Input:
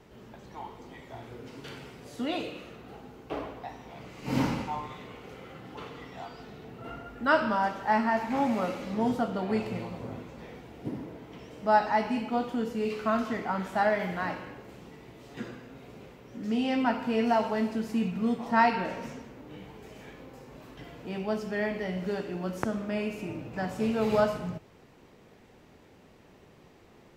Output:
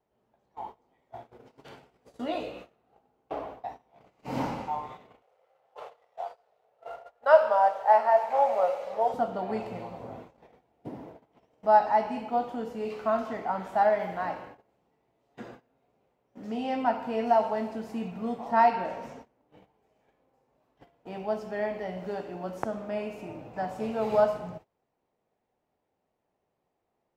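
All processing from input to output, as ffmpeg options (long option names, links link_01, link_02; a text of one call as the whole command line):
ffmpeg -i in.wav -filter_complex "[0:a]asettb=1/sr,asplit=3[link_01][link_02][link_03];[link_01]atrim=end=1.904[link_04];[link_02]atrim=start=1.9:end=2.62,asetpts=PTS-STARTPTS,afade=type=in:duration=0.004:curve=qsin,afade=type=out:start_time=0.716:duration=0.004:curve=qsin,asplit=2[link_05][link_06];[link_06]adelay=16,volume=-4.5dB[link_07];[link_05][link_07]amix=inputs=2:normalize=0,atrim=end_sample=31752,aeval=exprs='val(0)+0.00178*(sin(2*PI*60*n/s)+sin(2*PI*2*60*n/s)/2+sin(2*PI*3*60*n/s)/3+sin(2*PI*4*60*n/s)/4+sin(2*PI*5*60*n/s)/5)':channel_layout=same[link_08];[link_03]atrim=start=2.616[link_09];[link_04][link_08]acrossfade=duration=0.004:curve1=hsin:curve2=qsin[link_10];[link_10][link_09]acrossfade=duration=0.004:curve1=qsin:curve2=hsin,asettb=1/sr,asplit=3[link_11][link_12][link_13];[link_11]atrim=end=5.224[link_14];[link_12]atrim=start=5.22:end=9.14,asetpts=PTS-STARTPTS,afade=type=in:duration=0.004:curve=qsin,afade=type=out:start_time=3.916:duration=0.004:curve=qsin,aeval=exprs='sgn(val(0))*max(abs(val(0))-0.00224,0)':channel_layout=same,lowshelf=frequency=380:width_type=q:width=3:gain=-12,acompressor=mode=upward:threshold=-45dB:ratio=2.5:attack=3.2:release=140:knee=2.83:detection=peak[link_15];[link_13]atrim=start=9.136[link_16];[link_14][link_15]acrossfade=duration=0.004:curve1=hsin:curve2=qsin[link_17];[link_17][link_16]acrossfade=duration=0.004:curve1=qsin:curve2=hsin,agate=range=-21dB:threshold=-42dB:ratio=16:detection=peak,equalizer=frequency=730:width_type=o:width=1.2:gain=11.5,volume=-7dB" out.wav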